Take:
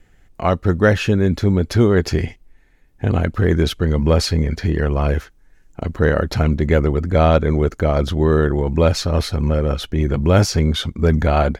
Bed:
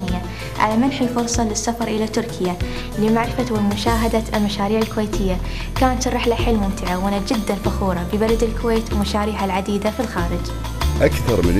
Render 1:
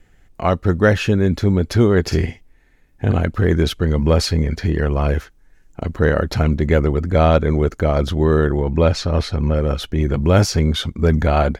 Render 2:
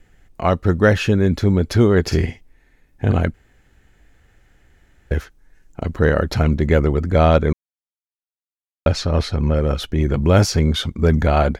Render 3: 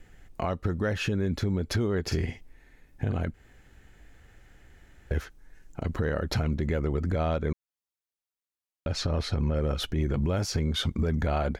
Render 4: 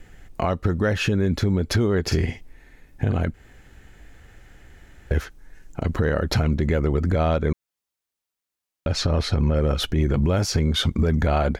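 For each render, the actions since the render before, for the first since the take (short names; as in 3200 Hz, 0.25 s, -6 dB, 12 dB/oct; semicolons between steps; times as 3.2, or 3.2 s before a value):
2.02–3.13 doubler 49 ms -7 dB; 8.58–9.57 air absorption 57 m
3.34–5.11 room tone; 7.53–8.86 mute
compressor 12:1, threshold -22 dBFS, peak gain reduction 14.5 dB; limiter -18 dBFS, peak gain reduction 8 dB
gain +6.5 dB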